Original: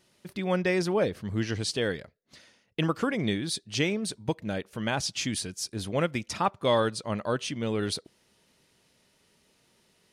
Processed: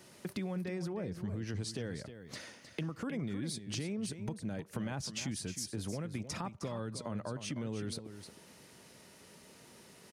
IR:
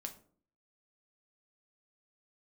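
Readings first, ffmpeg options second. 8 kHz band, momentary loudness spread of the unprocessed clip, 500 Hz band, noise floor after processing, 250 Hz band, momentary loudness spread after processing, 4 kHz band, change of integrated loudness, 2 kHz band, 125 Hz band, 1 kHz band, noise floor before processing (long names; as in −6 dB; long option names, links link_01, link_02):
−7.0 dB, 8 LU, −14.0 dB, −58 dBFS, −7.5 dB, 18 LU, −11.5 dB, −10.5 dB, −14.0 dB, −6.0 dB, −15.0 dB, −68 dBFS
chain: -filter_complex "[0:a]highpass=77,equalizer=frequency=3400:width_type=o:width=1.1:gain=-5.5,acrossover=split=240[link_01][link_02];[link_02]acompressor=threshold=-40dB:ratio=2.5[link_03];[link_01][link_03]amix=inputs=2:normalize=0,alimiter=level_in=3.5dB:limit=-24dB:level=0:latency=1,volume=-3.5dB,acompressor=threshold=-50dB:ratio=3,aecho=1:1:311:0.299,volume=10dB"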